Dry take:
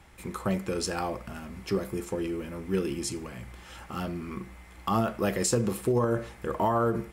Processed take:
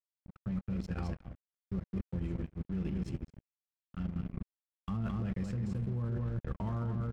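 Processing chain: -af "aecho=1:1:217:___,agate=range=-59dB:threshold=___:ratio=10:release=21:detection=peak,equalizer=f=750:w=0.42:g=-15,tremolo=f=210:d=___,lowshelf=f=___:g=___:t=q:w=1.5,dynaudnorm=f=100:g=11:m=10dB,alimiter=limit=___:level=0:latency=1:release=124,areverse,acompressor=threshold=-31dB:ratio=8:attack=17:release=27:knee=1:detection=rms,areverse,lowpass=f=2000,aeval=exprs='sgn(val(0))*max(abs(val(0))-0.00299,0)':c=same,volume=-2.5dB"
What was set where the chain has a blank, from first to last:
0.596, -34dB, 0.261, 240, 7.5, -15dB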